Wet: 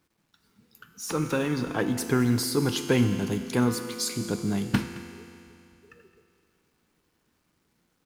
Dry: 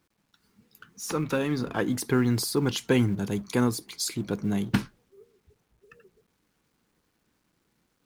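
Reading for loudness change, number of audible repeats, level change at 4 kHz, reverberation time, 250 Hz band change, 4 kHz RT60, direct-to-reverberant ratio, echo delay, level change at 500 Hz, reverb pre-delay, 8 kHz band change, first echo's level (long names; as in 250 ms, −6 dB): +0.5 dB, 1, +1.0 dB, 2.7 s, +0.5 dB, 2.7 s, 6.5 dB, 217 ms, +0.5 dB, 5 ms, +1.0 dB, −18.0 dB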